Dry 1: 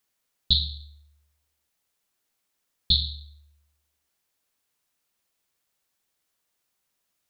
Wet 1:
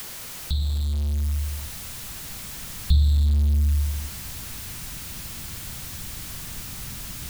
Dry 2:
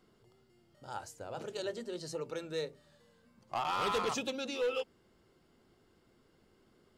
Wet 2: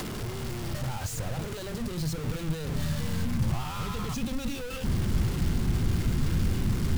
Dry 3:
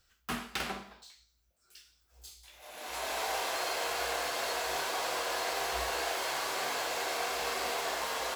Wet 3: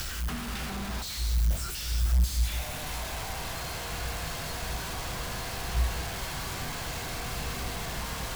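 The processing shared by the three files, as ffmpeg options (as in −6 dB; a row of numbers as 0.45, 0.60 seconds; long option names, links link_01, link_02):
-filter_complex "[0:a]aeval=exprs='val(0)+0.5*0.0891*sgn(val(0))':channel_layout=same,asubboost=boost=6:cutoff=190,acrossover=split=210[link_01][link_02];[link_02]acompressor=threshold=-33dB:ratio=4[link_03];[link_01][link_03]amix=inputs=2:normalize=0,volume=-4dB"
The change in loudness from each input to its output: −3.0, +6.0, +1.0 LU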